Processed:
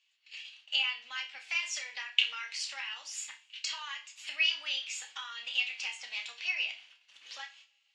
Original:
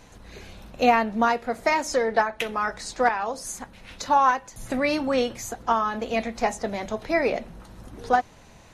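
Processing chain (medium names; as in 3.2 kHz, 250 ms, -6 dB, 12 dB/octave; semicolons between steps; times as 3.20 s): low-pass 6.1 kHz 24 dB/octave; gate -41 dBFS, range -22 dB; compression 3:1, threshold -30 dBFS, peak gain reduction 12.5 dB; resonant high-pass 2.6 kHz, resonance Q 4.9; tape speed +10%; on a send: flutter echo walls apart 5.1 m, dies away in 0.2 s; on the sum: two-slope reverb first 0.28 s, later 1.6 s, from -28 dB, DRR 5 dB; trim -2 dB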